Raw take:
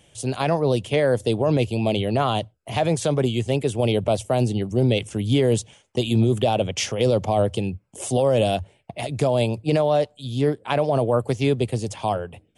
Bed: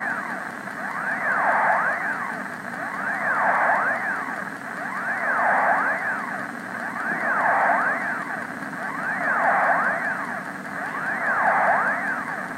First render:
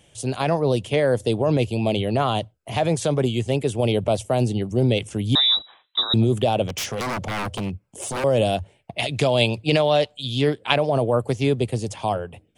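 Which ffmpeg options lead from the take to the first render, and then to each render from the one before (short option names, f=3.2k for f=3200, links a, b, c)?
-filter_complex "[0:a]asettb=1/sr,asplit=3[a][b][c];[a]atrim=end=5.354[d];[b]atrim=start=5.35:end=6.14,asetpts=PTS-STARTPTS,afade=t=in:d=0.004:c=qsin,afade=t=out:st=0.786:d=0.004:c=qsin,lowpass=f=3.4k:t=q:w=0.5098,lowpass=f=3.4k:t=q:w=0.6013,lowpass=f=3.4k:t=q:w=0.9,lowpass=f=3.4k:t=q:w=2.563,afreqshift=-4000[e];[c]atrim=start=6.136[f];[d][e]acrossfade=d=0.004:c1=hsin:c2=qsin[g];[g][f]acrossfade=d=0.004:c1=qsin:c2=hsin,asettb=1/sr,asplit=3[h][i][j];[h]atrim=end=6.664[k];[i]atrim=start=6.66:end=8.24,asetpts=PTS-STARTPTS,afade=t=in:d=0.004:c=qsin,afade=t=out:st=1.576:d=0.004:c=qsin,aeval=exprs='0.0841*(abs(mod(val(0)/0.0841+3,4)-2)-1)':c=same[l];[j]atrim=start=8.236[m];[k][l]acrossfade=d=0.004:c1=hsin:c2=qsin[n];[n][m]acrossfade=d=0.004:c1=qsin:c2=hsin,asettb=1/sr,asplit=3[o][p][q];[o]atrim=end=8.984[r];[p]atrim=start=8.98:end=10.76,asetpts=PTS-STARTPTS,afade=t=in:d=0.004:c=qsin,afade=t=out:st=1.776:d=0.004:c=qsin,equalizer=f=3.1k:t=o:w=1.6:g=11[s];[q]atrim=start=10.756[t];[r][s]acrossfade=d=0.004:c1=hsin:c2=qsin[u];[u][t]acrossfade=d=0.004:c1=qsin:c2=hsin"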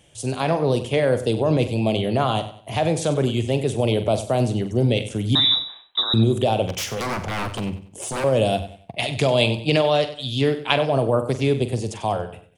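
-filter_complex "[0:a]asplit=2[a][b];[b]adelay=45,volume=-11.5dB[c];[a][c]amix=inputs=2:normalize=0,aecho=1:1:95|190|285:0.211|0.0697|0.023"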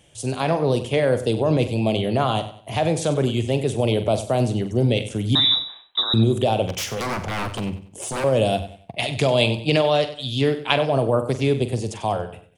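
-af anull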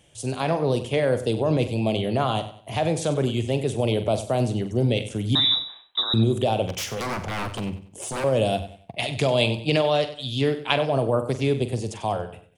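-af "volume=-2.5dB"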